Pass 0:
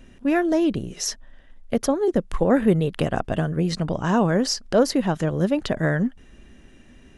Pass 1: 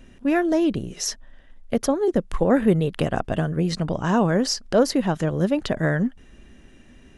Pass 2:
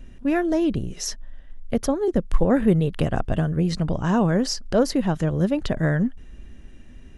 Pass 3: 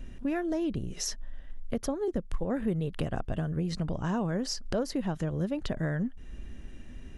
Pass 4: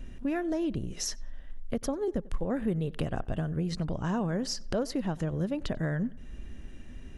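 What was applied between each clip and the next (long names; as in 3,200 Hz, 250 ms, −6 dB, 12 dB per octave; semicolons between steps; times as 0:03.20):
no processing that can be heard
low-shelf EQ 120 Hz +12 dB; level −2.5 dB
downward compressor 2.5 to 1, threshold −32 dBFS, peak gain reduction 14.5 dB
feedback echo with a low-pass in the loop 93 ms, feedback 47%, low-pass 3,200 Hz, level −22 dB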